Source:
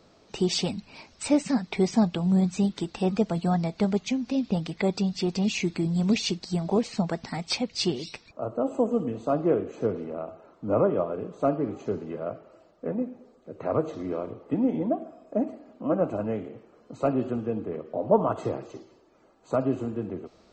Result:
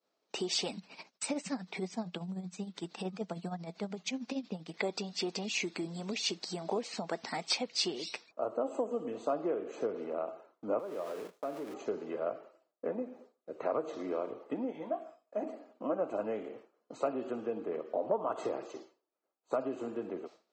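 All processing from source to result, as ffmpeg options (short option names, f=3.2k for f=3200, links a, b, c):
-filter_complex "[0:a]asettb=1/sr,asplit=3[a][b][c];[a]atrim=end=0.774[d];[b]atrim=start=0.77:end=4.74,asetpts=PTS-STARTPTS,afade=t=in:d=0.004:c=qsin,afade=t=out:st=3.966:d=0.004:c=qsin,tremolo=f=13:d=0.7,equalizer=f=180:t=o:w=0.48:g=10.5[e];[c]atrim=start=4.736[f];[d][e]acrossfade=d=0.004:c1=hsin:c2=qsin[g];[g][f]acrossfade=d=0.004:c1=qsin:c2=hsin,asettb=1/sr,asplit=3[h][i][j];[h]atrim=end=10.794[k];[i]atrim=start=10.79:end=11.74,asetpts=PTS-STARTPTS,afade=t=in:d=0.004:c=qsin,afade=t=out:st=0.946:d=0.004:c=qsin,aeval=exprs='val(0)+0.5*0.0178*sgn(val(0))':c=same,agate=range=-25dB:threshold=-33dB:ratio=16:release=100:detection=peak,acompressor=threshold=-38dB:ratio=2.5:attack=3.2:release=140:knee=1:detection=peak[l];[j]atrim=start=11.736[m];[k][l]acrossfade=d=0.004:c1=hsin:c2=qsin[n];[n][m]acrossfade=d=0.004:c1=qsin:c2=hsin,asettb=1/sr,asplit=3[o][p][q];[o]atrim=end=14.724[r];[p]atrim=start=14.72:end=15.43,asetpts=PTS-STARTPTS,afade=t=in:d=0.004:c=qsin,afade=t=out:st=0.706:d=0.004:c=qsin,equalizer=f=300:t=o:w=2.2:g=-12,asplit=2[s][t];[t]adelay=19,volume=-6.5dB[u];[s][u]amix=inputs=2:normalize=0,atrim=end_sample=31311[v];[q]atrim=start=15.426[w];[r][v]acrossfade=d=0.004:c1=hsin:c2=qsin[x];[x][w]acrossfade=d=0.004:c1=qsin:c2=hsin,agate=range=-33dB:threshold=-44dB:ratio=3:detection=peak,acompressor=threshold=-27dB:ratio=5,highpass=370"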